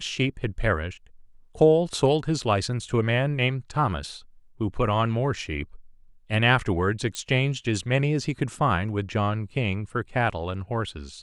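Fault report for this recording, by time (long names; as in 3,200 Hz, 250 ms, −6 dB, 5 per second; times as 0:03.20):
0:07.15: click −16 dBFS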